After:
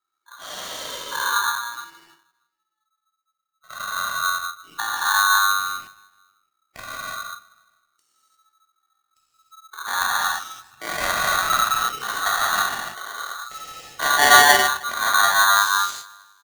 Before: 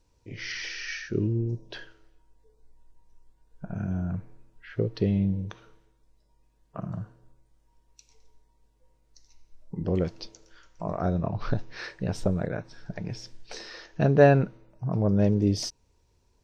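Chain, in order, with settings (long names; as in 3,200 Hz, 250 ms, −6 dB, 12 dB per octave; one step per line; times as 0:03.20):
noise reduction from a noise print of the clip's start 14 dB
0:10.10–0:11.03: comb filter 7.2 ms, depth 82%
in parallel at −4 dB: dead-zone distortion −35.5 dBFS
0:01.49–0:03.68: on the sum: stiff-string resonator 65 Hz, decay 0.68 s, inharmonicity 0.008
on a send: repeating echo 157 ms, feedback 56%, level −23 dB
on the sum: reverb whose tail is shaped and stops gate 370 ms flat, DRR −7 dB
ring modulator with a square carrier 1,300 Hz
level −5.5 dB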